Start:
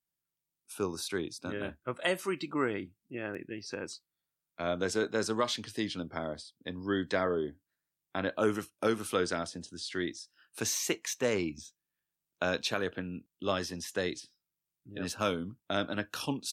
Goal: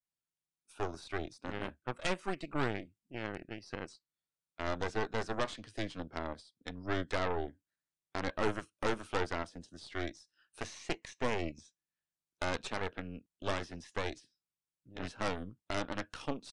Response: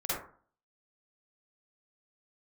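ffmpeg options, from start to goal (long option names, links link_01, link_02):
-filter_complex "[0:a]adynamicequalizer=threshold=0.00355:dfrequency=3600:dqfactor=1.1:tfrequency=3600:tqfactor=1.1:attack=5:release=100:ratio=0.375:range=2:mode=cutabove:tftype=bell,acrossover=split=4000[link_01][link_02];[link_02]acompressor=threshold=-53dB:ratio=6[link_03];[link_01][link_03]amix=inputs=2:normalize=0,aeval=exprs='0.168*(cos(1*acos(clip(val(0)/0.168,-1,1)))-cos(1*PI/2))+0.0531*(cos(6*acos(clip(val(0)/0.168,-1,1)))-cos(6*PI/2))':channel_layout=same,aresample=22050,aresample=44100,volume=-6.5dB"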